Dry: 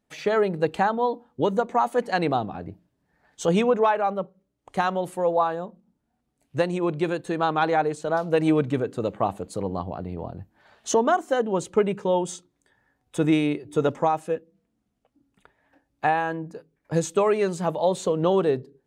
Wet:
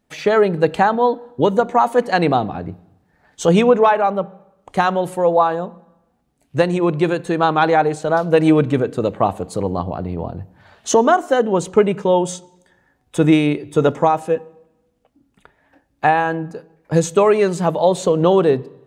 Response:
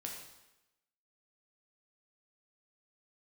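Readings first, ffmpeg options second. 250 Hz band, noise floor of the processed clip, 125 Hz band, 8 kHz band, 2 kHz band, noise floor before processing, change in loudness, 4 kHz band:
+7.5 dB, -64 dBFS, +8.5 dB, +6.5 dB, +7.0 dB, -76 dBFS, +7.5 dB, +7.0 dB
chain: -filter_complex "[0:a]asplit=2[a][b];[1:a]atrim=start_sample=2205,lowpass=6k,lowshelf=f=240:g=10[c];[b][c]afir=irnorm=-1:irlink=0,volume=-16dB[d];[a][d]amix=inputs=2:normalize=0,volume=6.5dB"

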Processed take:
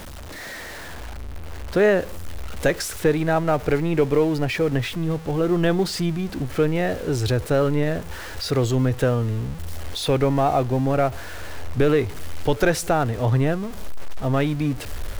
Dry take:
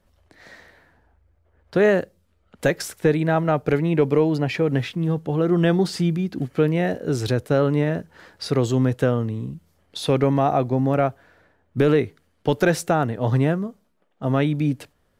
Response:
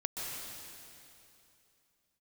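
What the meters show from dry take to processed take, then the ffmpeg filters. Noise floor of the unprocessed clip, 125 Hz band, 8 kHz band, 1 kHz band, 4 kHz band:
-65 dBFS, -0.5 dB, +4.0 dB, +0.5 dB, +2.5 dB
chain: -af "aeval=exprs='val(0)+0.5*0.0266*sgn(val(0))':c=same,asubboost=boost=7.5:cutoff=60"

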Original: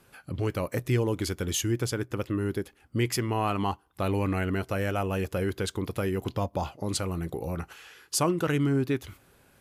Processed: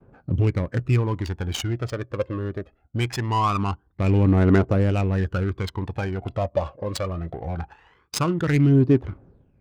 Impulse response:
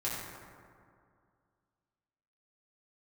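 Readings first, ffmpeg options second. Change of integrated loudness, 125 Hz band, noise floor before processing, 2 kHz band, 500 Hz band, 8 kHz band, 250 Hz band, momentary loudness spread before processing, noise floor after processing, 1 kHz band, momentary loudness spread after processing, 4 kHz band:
+6.0 dB, +8.5 dB, -62 dBFS, +2.5 dB, +3.5 dB, -5.0 dB, +6.0 dB, 7 LU, -63 dBFS, +4.5 dB, 14 LU, +1.0 dB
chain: -af "aphaser=in_gain=1:out_gain=1:delay=1.9:decay=0.7:speed=0.22:type=triangular,agate=range=-33dB:threshold=-49dB:ratio=3:detection=peak,adynamicsmooth=sensitivity=3:basefreq=970,volume=2.5dB"

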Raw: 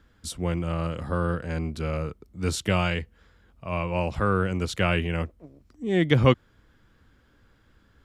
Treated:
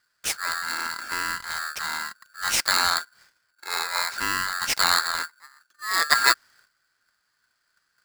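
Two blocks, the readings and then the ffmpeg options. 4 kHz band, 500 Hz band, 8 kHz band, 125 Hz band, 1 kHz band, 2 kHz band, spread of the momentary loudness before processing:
+11.0 dB, -14.5 dB, +13.5 dB, -25.5 dB, +5.5 dB, +8.0 dB, 11 LU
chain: -af "agate=range=-12dB:threshold=-55dB:ratio=16:detection=peak,highshelf=f=2.2k:t=q:w=3:g=9.5,aeval=exprs='val(0)*sgn(sin(2*PI*1500*n/s))':c=same,volume=-2.5dB"

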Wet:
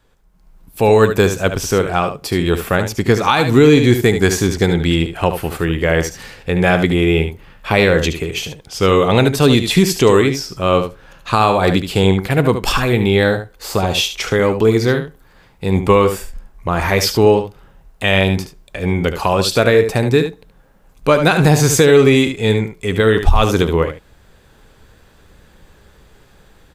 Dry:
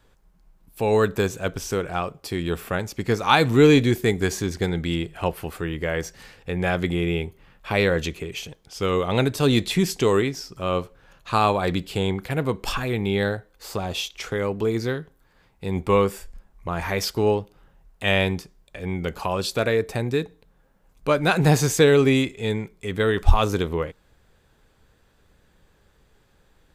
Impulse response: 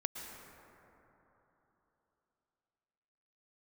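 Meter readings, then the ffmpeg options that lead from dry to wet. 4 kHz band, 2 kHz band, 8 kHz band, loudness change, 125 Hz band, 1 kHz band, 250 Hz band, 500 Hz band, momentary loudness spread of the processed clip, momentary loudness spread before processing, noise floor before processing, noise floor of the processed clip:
+8.5 dB, +8.0 dB, +9.5 dB, +8.5 dB, +8.5 dB, +7.5 dB, +8.5 dB, +8.5 dB, 10 LU, 13 LU, -61 dBFS, -50 dBFS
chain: -af "aecho=1:1:73:0.335,alimiter=limit=-11dB:level=0:latency=1:release=190,dynaudnorm=f=290:g=3:m=11dB,volume=1dB"

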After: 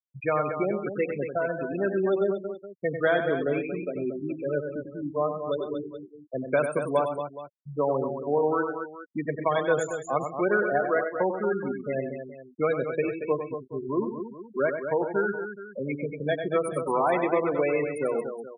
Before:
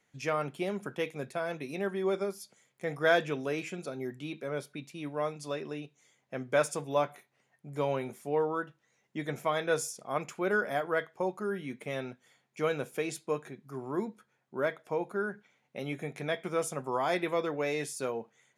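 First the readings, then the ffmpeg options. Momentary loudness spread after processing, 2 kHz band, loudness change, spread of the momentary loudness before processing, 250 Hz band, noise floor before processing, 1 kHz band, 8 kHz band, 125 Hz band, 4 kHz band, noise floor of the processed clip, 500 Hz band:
11 LU, +3.5 dB, +5.5 dB, 12 LU, +6.5 dB, -75 dBFS, +5.5 dB, -6.5 dB, +4.5 dB, n/a, -50 dBFS, +6.5 dB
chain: -filter_complex "[0:a]afftfilt=real='re*gte(hypot(re,im),0.0501)':imag='im*gte(hypot(re,im),0.0501)':win_size=1024:overlap=0.75,acrossover=split=250|1500|7400[a][b][c][d];[a]acompressor=threshold=-45dB:ratio=4[e];[b]acompressor=threshold=-29dB:ratio=4[f];[c]acompressor=threshold=-43dB:ratio=4[g];[d]acompressor=threshold=-55dB:ratio=4[h];[e][f][g][h]amix=inputs=4:normalize=0,asplit=2[i][j];[j]aecho=0:1:96|127|230|422:0.422|0.106|0.376|0.168[k];[i][k]amix=inputs=2:normalize=0,volume=7.5dB"

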